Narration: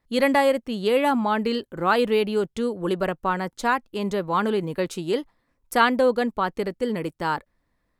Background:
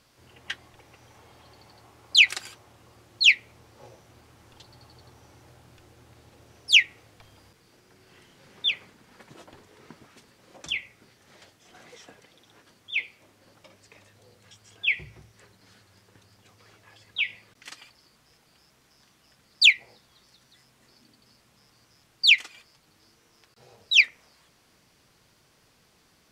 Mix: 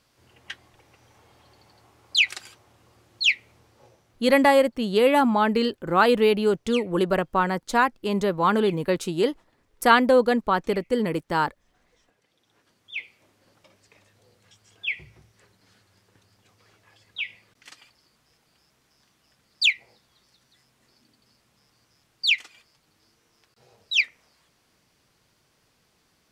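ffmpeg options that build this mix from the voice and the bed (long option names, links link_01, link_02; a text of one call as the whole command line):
ffmpeg -i stem1.wav -i stem2.wav -filter_complex "[0:a]adelay=4100,volume=2dB[link_01];[1:a]volume=10dB,afade=type=out:start_time=3.54:duration=0.95:silence=0.199526,afade=type=in:start_time=12.1:duration=1.07:silence=0.211349[link_02];[link_01][link_02]amix=inputs=2:normalize=0" out.wav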